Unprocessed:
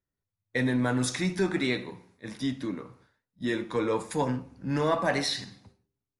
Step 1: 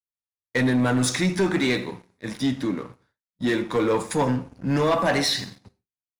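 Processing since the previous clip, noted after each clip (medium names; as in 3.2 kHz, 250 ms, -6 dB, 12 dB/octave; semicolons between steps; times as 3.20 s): gate with hold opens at -53 dBFS; waveshaping leveller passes 2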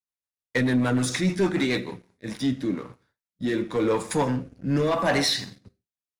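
rotary cabinet horn 6.7 Hz, later 0.9 Hz, at 1.75 s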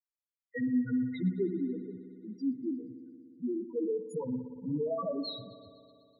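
loudest bins only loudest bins 2; spring tank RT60 2.6 s, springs 59 ms, chirp 70 ms, DRR 10.5 dB; trim -5.5 dB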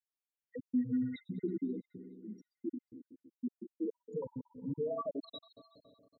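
random holes in the spectrogram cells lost 51%; trim -2.5 dB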